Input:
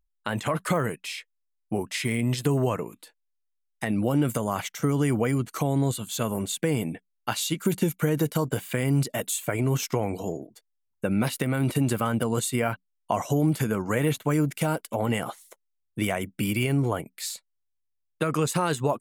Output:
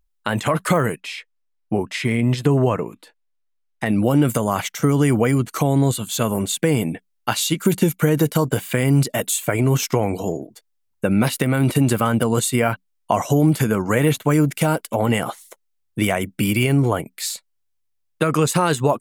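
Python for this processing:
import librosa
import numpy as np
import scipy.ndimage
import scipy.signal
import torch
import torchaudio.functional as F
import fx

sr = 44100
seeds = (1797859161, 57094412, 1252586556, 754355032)

y = fx.lowpass(x, sr, hz=2900.0, slope=6, at=(1.0, 3.86))
y = y * 10.0 ** (7.0 / 20.0)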